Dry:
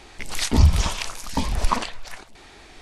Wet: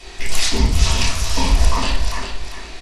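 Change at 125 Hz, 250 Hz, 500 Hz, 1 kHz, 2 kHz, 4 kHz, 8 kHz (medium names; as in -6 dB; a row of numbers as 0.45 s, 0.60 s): +1.5 dB, +2.0 dB, +5.0 dB, +3.0 dB, +7.0 dB, +8.5 dB, +7.5 dB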